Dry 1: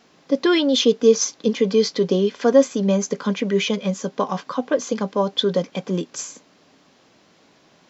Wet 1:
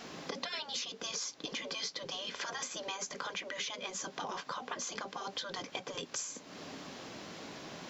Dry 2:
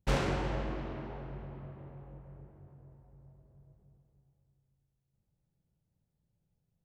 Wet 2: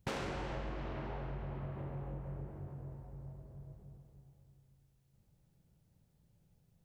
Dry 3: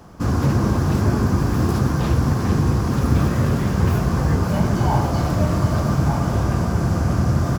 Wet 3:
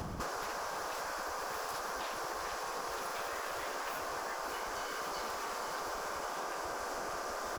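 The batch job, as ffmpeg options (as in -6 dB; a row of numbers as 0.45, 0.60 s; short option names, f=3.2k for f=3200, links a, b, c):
-af "afftfilt=real='re*lt(hypot(re,im),0.2)':imag='im*lt(hypot(re,im),0.2)':win_size=1024:overlap=0.75,adynamicequalizer=threshold=0.00316:dfrequency=270:dqfactor=0.83:tfrequency=270:tqfactor=0.83:attack=5:release=100:ratio=0.375:range=2.5:mode=cutabove:tftype=bell,acompressor=threshold=-47dB:ratio=6,volume=9dB"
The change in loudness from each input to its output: -19.0, -6.0, -19.0 LU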